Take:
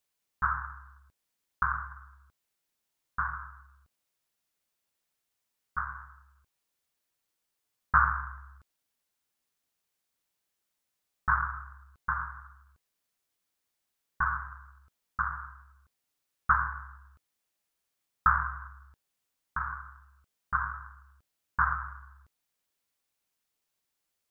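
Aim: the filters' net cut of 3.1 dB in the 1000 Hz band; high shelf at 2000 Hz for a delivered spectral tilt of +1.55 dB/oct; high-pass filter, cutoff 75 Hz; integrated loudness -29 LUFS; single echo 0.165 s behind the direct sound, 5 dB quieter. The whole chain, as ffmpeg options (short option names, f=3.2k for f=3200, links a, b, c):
-af "highpass=75,equalizer=f=1k:t=o:g=-6.5,highshelf=f=2k:g=6,aecho=1:1:165:0.562,volume=4.5dB"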